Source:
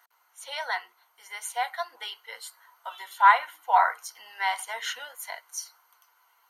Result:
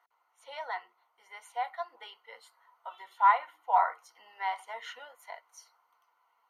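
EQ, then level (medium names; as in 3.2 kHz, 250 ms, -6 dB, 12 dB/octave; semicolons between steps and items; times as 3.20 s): treble shelf 2.5 kHz -11.5 dB; treble shelf 5 kHz -9.5 dB; band-stop 1.6 kHz, Q 5.5; -2.5 dB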